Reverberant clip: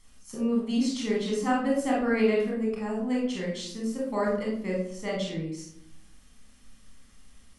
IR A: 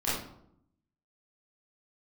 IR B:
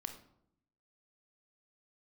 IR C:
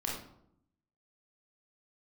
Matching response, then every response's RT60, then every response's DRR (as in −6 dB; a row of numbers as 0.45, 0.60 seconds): C; 0.70, 0.75, 0.75 seconds; −11.0, 5.5, −4.0 decibels